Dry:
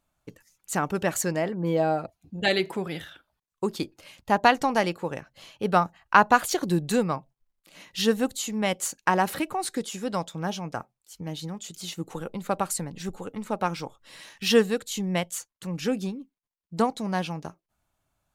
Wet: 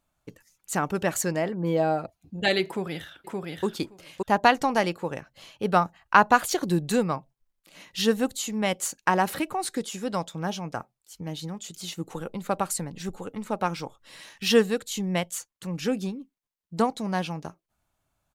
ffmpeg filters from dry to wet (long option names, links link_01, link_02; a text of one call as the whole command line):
ffmpeg -i in.wav -filter_complex "[0:a]asplit=2[link_01][link_02];[link_02]afade=type=in:start_time=2.67:duration=0.01,afade=type=out:start_time=3.65:duration=0.01,aecho=0:1:570|1140:0.749894|0.0749894[link_03];[link_01][link_03]amix=inputs=2:normalize=0" out.wav